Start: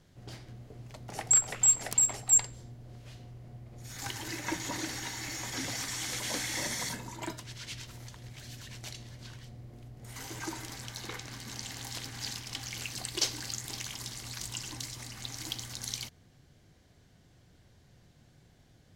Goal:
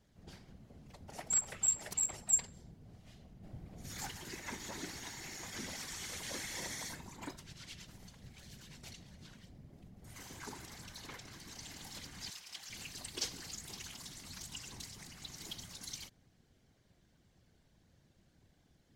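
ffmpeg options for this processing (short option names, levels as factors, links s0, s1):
-filter_complex "[0:a]asettb=1/sr,asplit=3[s0][s1][s2];[s0]atrim=end=3.434[s3];[s1]atrim=start=3.43:end=4.06,asetpts=PTS-STARTPTS,afade=t=in:d=0.004:c=qsin,afade=t=out:st=0.626:d=0.004:c=qsin,acontrast=53[s4];[s2]atrim=start=4.056[s5];[s3][s4]acrossfade=d=0.004:c1=hsin:c2=qsin[s6];[s6][s5]acrossfade=d=0.004:c1=qsin:c2=hsin,asettb=1/sr,asplit=3[s7][s8][s9];[s7]atrim=end=12.304[s10];[s8]atrim=start=12.3:end=12.7,asetpts=PTS-STARTPTS,afade=t=in:d=0.004:c=qsin,afade=t=out:st=0.396:d=0.004:c=qsin,highpass=f=970:p=1[s11];[s9]atrim=start=12.696[s12];[s10][s11]acrossfade=d=0.004:c1=hsin:c2=qsin[s13];[s13][s12]acrossfade=d=0.004:c1=qsin:c2=hsin,afftfilt=real='hypot(re,im)*cos(2*PI*random(0))':imag='hypot(re,im)*sin(2*PI*random(1))':win_size=512:overlap=0.75,volume=0.794"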